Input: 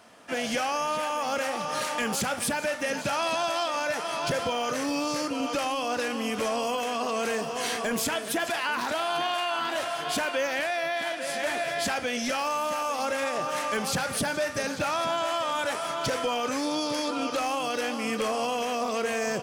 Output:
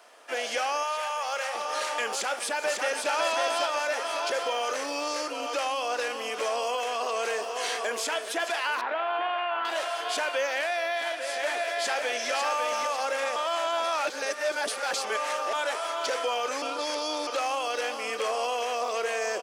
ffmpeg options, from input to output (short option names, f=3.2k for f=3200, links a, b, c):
-filter_complex "[0:a]asettb=1/sr,asplit=3[a][b][c];[a]atrim=end=0.834[d];[b]atrim=start=0.83:end=1.55,asetpts=PTS-STARTPTS,afade=t=in:d=0.004:c=qsin,afade=t=out:st=0.716:d=0.004:c=qsin,equalizer=f=290:t=o:w=1.1:g=-14.5[e];[c]atrim=start=1.546[f];[d][e]acrossfade=d=0.004:c1=hsin:c2=qsin[g];[g][f]acrossfade=d=0.004:c1=qsin:c2=hsin,asplit=2[h][i];[i]afade=t=in:st=2.08:d=0.01,afade=t=out:st=3.11:d=0.01,aecho=0:1:550|1100|1650|2200|2750|3300|3850:0.668344|0.334172|0.167086|0.083543|0.0417715|0.0208857|0.0104429[j];[h][j]amix=inputs=2:normalize=0,asettb=1/sr,asplit=3[k][l][m];[k]atrim=end=8.814[n];[l]atrim=start=8.81:end=9.65,asetpts=PTS-STARTPTS,afade=t=in:d=0.004:c=qsin,afade=t=out:st=0.836:d=0.004:c=qsin,lowpass=f=2.6k:w=0.5412,lowpass=f=2.6k:w=1.3066[o];[m]atrim=start=9.646[p];[n][o]acrossfade=d=0.004:c1=hsin:c2=qsin[q];[q][p]acrossfade=d=0.004:c1=qsin:c2=hsin,asplit=2[r][s];[s]afade=t=in:st=11.28:d=0.01,afade=t=out:st=12.32:d=0.01,aecho=0:1:550|1100|1650|2200:0.562341|0.196819|0.0688868|0.0241104[t];[r][t]amix=inputs=2:normalize=0,asplit=5[u][v][w][x][y];[u]atrim=end=13.362[z];[v]atrim=start=13.358:end=15.532,asetpts=PTS-STARTPTS,areverse[aa];[w]atrim=start=15.528:end=16.622[ab];[x]atrim=start=16.618:end=17.272,asetpts=PTS-STARTPTS,areverse[ac];[y]atrim=start=17.268[ad];[z][aa]acrossfade=d=0.004:c1=hsin:c2=hsin[ae];[ae][ab]acrossfade=d=0.004:c1=hsin:c2=hsin[af];[af][ac]acrossfade=d=0.004:c1=hsin:c2=hsin[ag];[ag][ad]acrossfade=d=0.004:c1=hsin:c2=hsin,acrossover=split=9400[ah][ai];[ai]acompressor=threshold=-56dB:ratio=4:attack=1:release=60[aj];[ah][aj]amix=inputs=2:normalize=0,highpass=f=390:w=0.5412,highpass=f=390:w=1.3066"